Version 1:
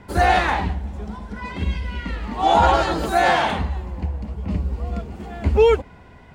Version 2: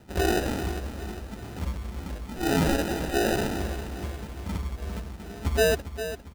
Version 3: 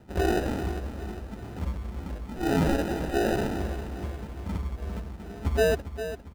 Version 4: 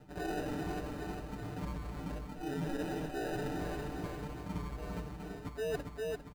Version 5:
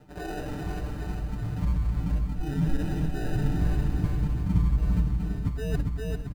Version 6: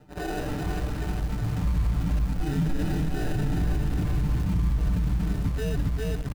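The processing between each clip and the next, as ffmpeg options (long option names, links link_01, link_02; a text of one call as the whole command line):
ffmpeg -i in.wav -filter_complex "[0:a]acrusher=samples=40:mix=1:aa=0.000001,asplit=2[link_01][link_02];[link_02]aecho=0:1:402|804|1206|1608|2010:0.282|0.141|0.0705|0.0352|0.0176[link_03];[link_01][link_03]amix=inputs=2:normalize=0,volume=-8dB" out.wav
ffmpeg -i in.wav -af "highshelf=frequency=2200:gain=-8" out.wav
ffmpeg -i in.wav -af "aecho=1:1:6.7:1,areverse,acompressor=threshold=-30dB:ratio=8,areverse,volume=-4dB" out.wav
ffmpeg -i in.wav -af "asubboost=boost=10.5:cutoff=160,aecho=1:1:512:0.188,volume=2.5dB" out.wav
ffmpeg -i in.wav -filter_complex "[0:a]asplit=2[link_01][link_02];[link_02]acrusher=bits=5:mix=0:aa=0.000001,volume=-6dB[link_03];[link_01][link_03]amix=inputs=2:normalize=0,alimiter=limit=-18dB:level=0:latency=1:release=22" out.wav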